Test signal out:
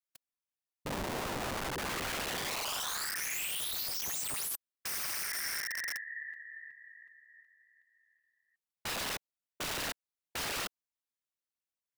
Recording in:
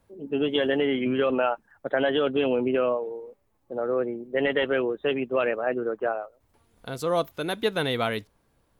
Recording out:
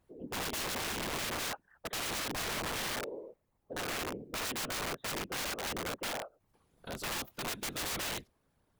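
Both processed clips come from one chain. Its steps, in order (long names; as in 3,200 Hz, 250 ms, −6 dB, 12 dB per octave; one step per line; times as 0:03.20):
random phases in short frames
wrap-around overflow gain 24.5 dB
level −7 dB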